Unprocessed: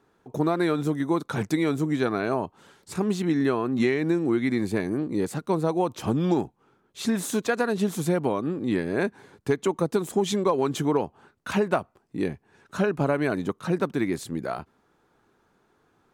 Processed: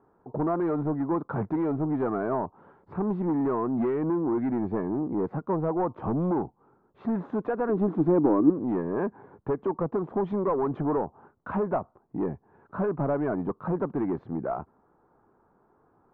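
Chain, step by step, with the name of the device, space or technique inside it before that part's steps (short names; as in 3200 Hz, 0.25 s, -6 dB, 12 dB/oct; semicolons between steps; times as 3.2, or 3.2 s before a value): overdriven synthesiser ladder filter (soft clip -23 dBFS, distortion -11 dB; ladder low-pass 1300 Hz, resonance 30%); 7.69–8.5 bell 310 Hz +15 dB 0.43 oct; gain +7.5 dB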